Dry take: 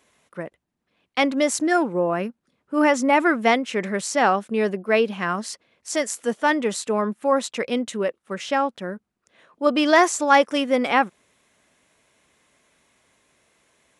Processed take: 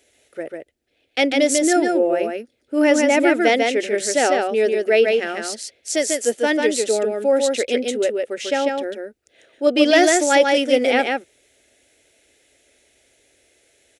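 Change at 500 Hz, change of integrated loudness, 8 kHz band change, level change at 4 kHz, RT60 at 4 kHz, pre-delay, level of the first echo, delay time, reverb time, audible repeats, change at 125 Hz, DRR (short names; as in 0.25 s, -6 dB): +5.5 dB, +3.0 dB, +6.5 dB, +5.5 dB, none, none, -3.5 dB, 0.145 s, none, 1, under -10 dB, none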